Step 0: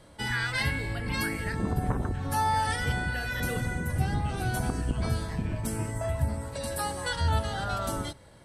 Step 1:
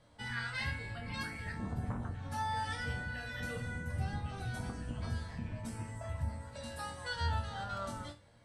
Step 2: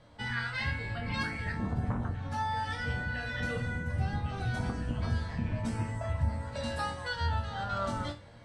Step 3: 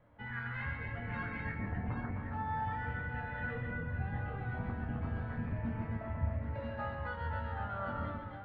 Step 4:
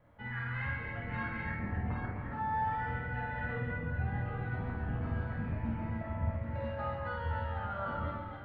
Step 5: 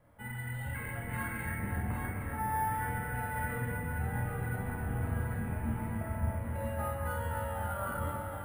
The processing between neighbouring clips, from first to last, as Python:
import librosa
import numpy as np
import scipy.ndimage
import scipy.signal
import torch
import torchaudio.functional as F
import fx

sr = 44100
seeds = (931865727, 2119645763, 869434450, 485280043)

y1 = scipy.signal.sosfilt(scipy.signal.butter(2, 7100.0, 'lowpass', fs=sr, output='sos'), x)
y1 = fx.peak_eq(y1, sr, hz=370.0, db=-8.0, octaves=0.39)
y1 = fx.resonator_bank(y1, sr, root=39, chord='major', decay_s=0.27)
y1 = y1 * librosa.db_to_amplitude(2.0)
y2 = fx.air_absorb(y1, sr, metres=72.0)
y2 = fx.rider(y2, sr, range_db=5, speed_s=0.5)
y2 = y2 * librosa.db_to_amplitude(6.0)
y3 = scipy.signal.sosfilt(scipy.signal.butter(4, 2300.0, 'lowpass', fs=sr, output='sos'), y2)
y3 = fx.echo_multitap(y3, sr, ms=(137, 260, 779), db=(-6.0, -5.0, -6.5))
y3 = y3 * librosa.db_to_amplitude(-7.0)
y4 = fx.doubler(y3, sr, ms=49.0, db=-2.5)
y5 = fx.spec_repair(y4, sr, seeds[0], start_s=0.3, length_s=0.43, low_hz=990.0, high_hz=2700.0, source='before')
y5 = fx.echo_heads(y5, sr, ms=271, heads='second and third', feedback_pct=60, wet_db=-10.0)
y5 = np.repeat(y5[::4], 4)[:len(y5)]